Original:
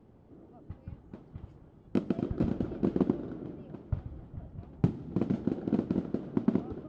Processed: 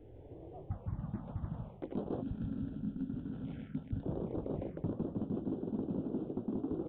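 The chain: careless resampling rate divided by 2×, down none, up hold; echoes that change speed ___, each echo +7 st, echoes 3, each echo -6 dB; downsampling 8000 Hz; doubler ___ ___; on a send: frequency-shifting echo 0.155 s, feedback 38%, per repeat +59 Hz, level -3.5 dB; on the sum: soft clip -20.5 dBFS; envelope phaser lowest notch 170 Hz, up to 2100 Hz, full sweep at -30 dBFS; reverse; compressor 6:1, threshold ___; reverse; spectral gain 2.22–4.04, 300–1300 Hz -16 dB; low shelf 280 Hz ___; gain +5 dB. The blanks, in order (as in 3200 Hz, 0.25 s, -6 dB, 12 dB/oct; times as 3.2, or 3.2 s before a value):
0.519 s, 19 ms, -10.5 dB, -42 dBFS, +4 dB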